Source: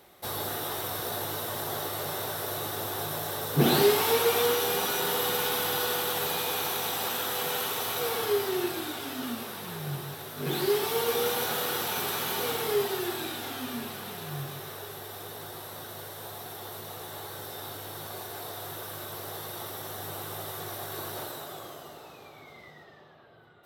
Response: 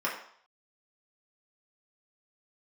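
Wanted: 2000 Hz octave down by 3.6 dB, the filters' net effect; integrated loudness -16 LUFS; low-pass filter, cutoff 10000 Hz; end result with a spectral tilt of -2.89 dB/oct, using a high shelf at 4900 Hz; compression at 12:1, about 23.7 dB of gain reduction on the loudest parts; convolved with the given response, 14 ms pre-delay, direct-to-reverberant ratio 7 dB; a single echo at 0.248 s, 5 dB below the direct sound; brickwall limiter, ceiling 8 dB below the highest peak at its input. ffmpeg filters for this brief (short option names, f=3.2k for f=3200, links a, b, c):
-filter_complex "[0:a]lowpass=10k,equalizer=f=2k:t=o:g=-6,highshelf=f=4.9k:g=6,acompressor=threshold=-42dB:ratio=12,alimiter=level_in=14.5dB:limit=-24dB:level=0:latency=1,volume=-14.5dB,aecho=1:1:248:0.562,asplit=2[a][b];[1:a]atrim=start_sample=2205,adelay=14[c];[b][c]afir=irnorm=-1:irlink=0,volume=-16dB[d];[a][d]amix=inputs=2:normalize=0,volume=29.5dB"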